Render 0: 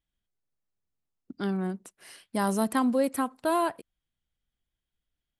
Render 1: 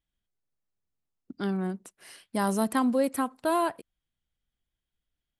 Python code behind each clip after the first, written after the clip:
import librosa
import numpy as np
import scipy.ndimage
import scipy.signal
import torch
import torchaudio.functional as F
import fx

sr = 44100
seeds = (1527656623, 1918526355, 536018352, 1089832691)

y = x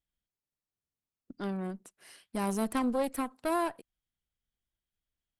y = fx.tube_stage(x, sr, drive_db=20.0, bias=0.8)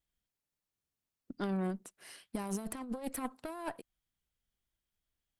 y = fx.over_compress(x, sr, threshold_db=-34.0, ratio=-0.5)
y = F.gain(torch.from_numpy(y), -2.0).numpy()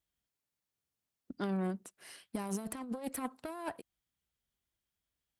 y = scipy.signal.sosfilt(scipy.signal.butter(2, 51.0, 'highpass', fs=sr, output='sos'), x)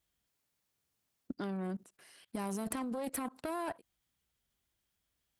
y = fx.level_steps(x, sr, step_db=23)
y = F.gain(torch.from_numpy(y), 9.0).numpy()